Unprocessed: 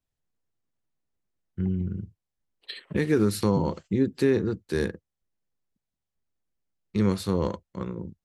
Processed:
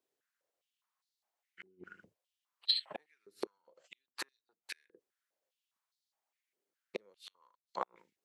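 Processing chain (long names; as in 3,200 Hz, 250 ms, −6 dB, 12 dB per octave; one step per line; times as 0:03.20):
gate with flip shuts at −19 dBFS, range −40 dB
high-pass on a step sequencer 4.9 Hz 390–4,200 Hz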